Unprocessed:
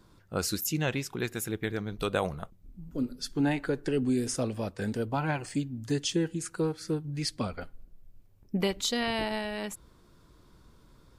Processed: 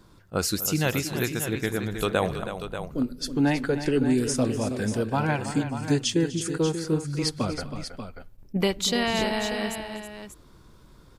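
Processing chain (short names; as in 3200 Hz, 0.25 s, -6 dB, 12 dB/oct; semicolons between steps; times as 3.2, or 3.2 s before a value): on a send: tapped delay 0.247/0.322/0.588 s -17.5/-10.5/-10 dB; on the sum: attack slew limiter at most 580 dB/s; gain +4.5 dB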